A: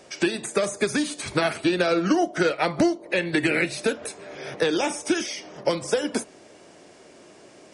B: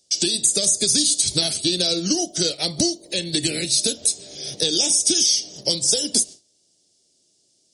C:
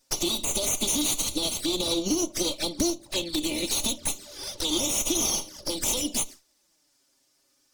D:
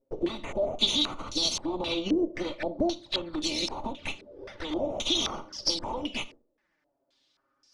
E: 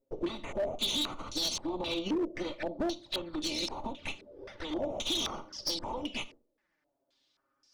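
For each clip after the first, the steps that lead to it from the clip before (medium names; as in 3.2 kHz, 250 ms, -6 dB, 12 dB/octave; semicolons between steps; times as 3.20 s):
high-order bell 1.6 kHz -13 dB; gate with hold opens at -37 dBFS; FFT filter 100 Hz 0 dB, 780 Hz -12 dB, 1.6 kHz -6 dB, 4.8 kHz +13 dB; trim +4 dB
comb filter that takes the minimum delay 3.4 ms; peak limiter -12 dBFS, peak gain reduction 8.5 dB; touch-sensitive flanger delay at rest 7.6 ms, full sweep at -23 dBFS
reverberation RT60 0.40 s, pre-delay 37 ms, DRR 18 dB; step-sequenced low-pass 3.8 Hz 470–5200 Hz; trim -3.5 dB
overload inside the chain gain 23 dB; trim -3.5 dB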